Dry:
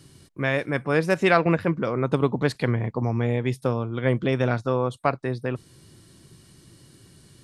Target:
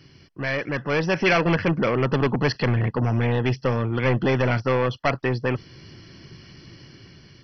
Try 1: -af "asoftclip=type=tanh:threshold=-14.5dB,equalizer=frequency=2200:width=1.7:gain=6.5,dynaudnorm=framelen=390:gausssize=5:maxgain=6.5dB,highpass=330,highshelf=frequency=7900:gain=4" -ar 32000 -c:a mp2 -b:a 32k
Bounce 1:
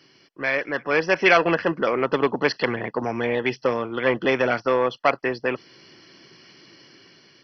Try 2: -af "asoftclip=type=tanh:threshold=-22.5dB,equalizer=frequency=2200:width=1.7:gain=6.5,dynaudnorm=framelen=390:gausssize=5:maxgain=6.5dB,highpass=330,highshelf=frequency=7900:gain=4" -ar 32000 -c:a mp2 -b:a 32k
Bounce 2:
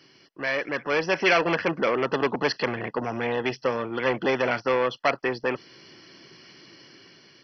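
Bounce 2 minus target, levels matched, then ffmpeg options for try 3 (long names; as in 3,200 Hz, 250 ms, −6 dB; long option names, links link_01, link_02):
250 Hz band −3.0 dB
-af "asoftclip=type=tanh:threshold=-22.5dB,equalizer=frequency=2200:width=1.7:gain=6.5,dynaudnorm=framelen=390:gausssize=5:maxgain=6.5dB,highshelf=frequency=7900:gain=4" -ar 32000 -c:a mp2 -b:a 32k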